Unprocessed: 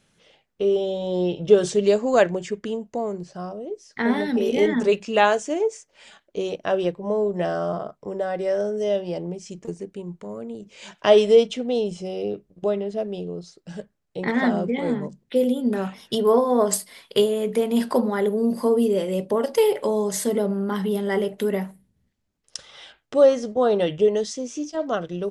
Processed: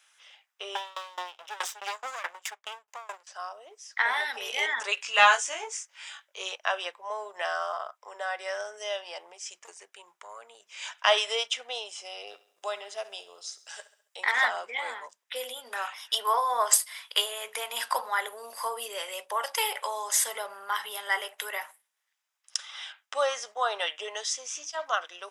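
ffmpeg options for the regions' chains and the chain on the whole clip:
ffmpeg -i in.wav -filter_complex "[0:a]asettb=1/sr,asplit=3[link_01][link_02][link_03];[link_01]atrim=end=0.754[link_04];[link_02]atrim=start=0.75:end=3.27,asetpts=PTS-STARTPTS,afade=type=in:duration=0.004:curve=qsin,afade=type=out:start_time=2.516:duration=0.004:curve=qsin,acontrast=52,aeval=exprs='max(val(0),0)':channel_layout=same,aeval=exprs='val(0)*pow(10,-26*if(lt(mod(4.7*n/s,1),2*abs(4.7)/1000),1-mod(4.7*n/s,1)/(2*abs(4.7)/1000),(mod(4.7*n/s,1)-2*abs(4.7)/1000)/(1-2*abs(4.7)/1000))/20)':channel_layout=same[link_05];[link_03]atrim=start=3.266[link_06];[link_04][link_05]acrossfade=duration=0.004:curve1=hsin:curve2=qsin[link_07];[link_07][link_06]acrossfade=duration=0.004:curve1=qsin:curve2=hsin,asettb=1/sr,asplit=3[link_08][link_09][link_10];[link_08]atrim=end=4.954[link_11];[link_09]atrim=start=4.95:end=6.55,asetpts=PTS-STARTPTS,afade=type=in:duration=0.004:curve=qsin,afade=type=out:start_time=1.596:duration=0.004:curve=qsin,equalizer=frequency=700:width=4:gain=-5,asplit=2[link_12][link_13];[link_13]adelay=21,volume=-3dB[link_14];[link_12][link_14]amix=inputs=2:normalize=0,atrim=end_sample=70560[link_15];[link_10]atrim=start=6.546[link_16];[link_11][link_15]acrossfade=duration=0.004:curve1=hsin:curve2=qsin[link_17];[link_17][link_16]acrossfade=duration=0.004:curve1=qsin:curve2=hsin,asettb=1/sr,asplit=3[link_18][link_19][link_20];[link_18]atrim=end=12.274[link_21];[link_19]atrim=start=12.27:end=14.45,asetpts=PTS-STARTPTS,afade=type=in:duration=0.004:curve=qsin,afade=type=out:start_time=2.176:duration=0.004:curve=qsin,bass=frequency=250:gain=2,treble=frequency=4000:gain=7,aecho=1:1:68|136|204|272:0.158|0.0761|0.0365|0.0175,atrim=end_sample=96138[link_22];[link_20]atrim=start=14.446[link_23];[link_21][link_22]acrossfade=duration=0.004:curve1=hsin:curve2=qsin[link_24];[link_24][link_23]acrossfade=duration=0.004:curve1=qsin:curve2=hsin,highpass=frequency=930:width=0.5412,highpass=frequency=930:width=1.3066,bandreject=frequency=4300:width=8.2,acontrast=48,volume=-1.5dB" out.wav

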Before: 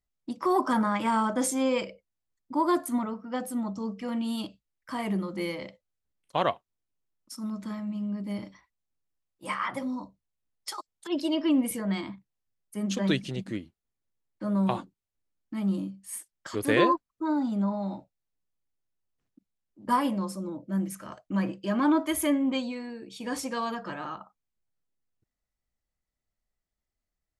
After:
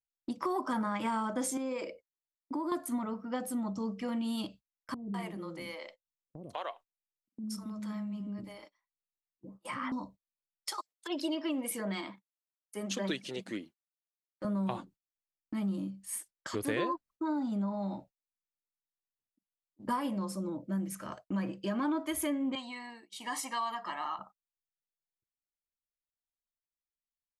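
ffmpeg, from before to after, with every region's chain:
ffmpeg -i in.wav -filter_complex "[0:a]asettb=1/sr,asplit=3[link_01][link_02][link_03];[link_01]atrim=end=1.574[link_04];[link_02]atrim=start=1.57:end=2.72,asetpts=PTS-STARTPTS,afade=type=in:duration=0.004:curve=qsin,afade=type=out:start_time=1.146:duration=0.004:curve=qsin,lowshelf=frequency=230:width_type=q:width=3:gain=-7.5,bandreject=frequency=3100:width=10,acompressor=threshold=-31dB:ratio=5:attack=3.2:release=140:knee=1:detection=peak[link_05];[link_03]atrim=start=2.716[link_06];[link_04][link_05]acrossfade=duration=0.004:curve1=hsin:curve2=qsin[link_07];[link_07][link_06]acrossfade=duration=0.004:curve1=qsin:curve2=hsin,asettb=1/sr,asplit=3[link_08][link_09][link_10];[link_08]atrim=end=4.944[link_11];[link_09]atrim=start=4.94:end=9.92,asetpts=PTS-STARTPTS,afade=type=in:duration=0.004:curve=qsin,afade=type=out:start_time=4.976:duration=0.004:curve=qsin,acompressor=threshold=-39dB:ratio=2:attack=3.2:release=140:knee=1:detection=peak,acrossover=split=400[link_12][link_13];[link_13]adelay=200[link_14];[link_12][link_14]amix=inputs=2:normalize=0,atrim=end_sample=219618[link_15];[link_10]atrim=start=9.916[link_16];[link_11][link_15]acrossfade=duration=0.004:curve1=hsin:curve2=qsin[link_17];[link_17][link_16]acrossfade=duration=0.004:curve1=qsin:curve2=hsin,asettb=1/sr,asplit=3[link_18][link_19][link_20];[link_18]atrim=end=10.704[link_21];[link_19]atrim=start=10.7:end=14.45,asetpts=PTS-STARTPTS,afade=type=in:duration=0.004:curve=qsin,afade=type=out:start_time=3.746:duration=0.004:curve=qsin,highpass=310,aphaser=in_gain=1:out_gain=1:delay=2.4:decay=0.32:speed=1.7:type=triangular[link_22];[link_20]atrim=start=14.446[link_23];[link_21][link_22]acrossfade=duration=0.004:curve1=hsin:curve2=qsin[link_24];[link_24][link_23]acrossfade=duration=0.004:curve1=qsin:curve2=hsin,asettb=1/sr,asplit=3[link_25][link_26][link_27];[link_25]atrim=end=22.554[link_28];[link_26]atrim=start=22.55:end=24.19,asetpts=PTS-STARTPTS,afade=type=in:duration=0.004:curve=qsin,afade=type=out:start_time=1.636:duration=0.004:curve=qsin,highpass=540,aecho=1:1:1:0.78,atrim=end_sample=72324,adynamicequalizer=threshold=0.00224:dfrequency=5800:dqfactor=1.3:tfrequency=5800:tqfactor=1.3:attack=5:release=100:ratio=0.375:range=3:mode=cutabove:tftype=bell[link_29];[link_27]atrim=start=24.186[link_30];[link_28][link_29]acrossfade=duration=0.004:curve1=hsin:curve2=qsin[link_31];[link_31][link_30]acrossfade=duration=0.004:curve1=qsin:curve2=hsin,agate=range=-22dB:threshold=-51dB:ratio=16:detection=peak,acompressor=threshold=-32dB:ratio=3" out.wav

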